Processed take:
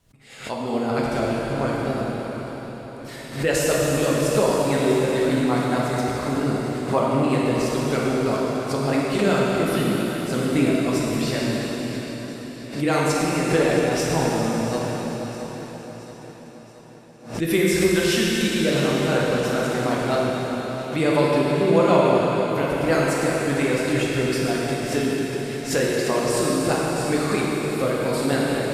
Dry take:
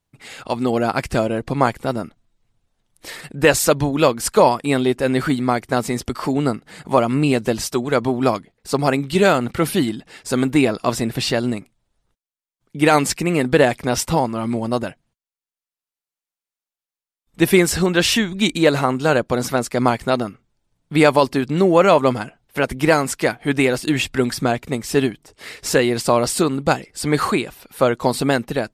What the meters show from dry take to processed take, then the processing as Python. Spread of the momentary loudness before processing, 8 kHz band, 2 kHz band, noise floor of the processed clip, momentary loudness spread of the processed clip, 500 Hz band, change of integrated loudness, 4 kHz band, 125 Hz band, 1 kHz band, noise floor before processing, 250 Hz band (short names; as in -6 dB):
10 LU, -3.5 dB, -3.5 dB, -40 dBFS, 11 LU, -2.5 dB, -3.0 dB, -3.5 dB, -1.5 dB, -4.5 dB, under -85 dBFS, -2.0 dB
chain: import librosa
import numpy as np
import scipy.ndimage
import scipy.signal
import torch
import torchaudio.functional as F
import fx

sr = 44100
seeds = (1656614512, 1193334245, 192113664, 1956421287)

y = fx.rotary(x, sr, hz=5.0)
y = fx.echo_feedback(y, sr, ms=674, feedback_pct=55, wet_db=-14)
y = fx.rev_plate(y, sr, seeds[0], rt60_s=4.3, hf_ratio=1.0, predelay_ms=0, drr_db=-5.5)
y = fx.pre_swell(y, sr, db_per_s=120.0)
y = y * librosa.db_to_amplitude(-7.5)